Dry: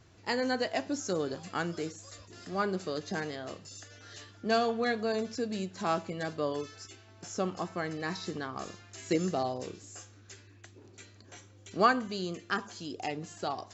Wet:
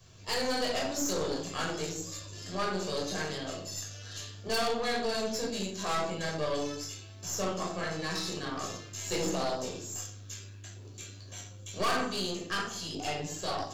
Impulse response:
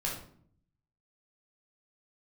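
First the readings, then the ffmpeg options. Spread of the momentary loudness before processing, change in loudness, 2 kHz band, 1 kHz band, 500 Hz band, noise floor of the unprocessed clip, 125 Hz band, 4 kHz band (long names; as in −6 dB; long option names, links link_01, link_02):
19 LU, −0.5 dB, −0.5 dB, −1.5 dB, −0.5 dB, −56 dBFS, +1.0 dB, +6.0 dB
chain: -filter_complex "[0:a]acrossover=split=240|1400[link_01][link_02][link_03];[link_01]acompressor=threshold=-50dB:ratio=6[link_04];[link_04][link_02][link_03]amix=inputs=3:normalize=0[link_05];[1:a]atrim=start_sample=2205[link_06];[link_05][link_06]afir=irnorm=-1:irlink=0,aexciter=amount=2.3:drive=6.1:freq=2800,aeval=exprs='(tanh(20*val(0)+0.6)-tanh(0.6))/20':channel_layout=same"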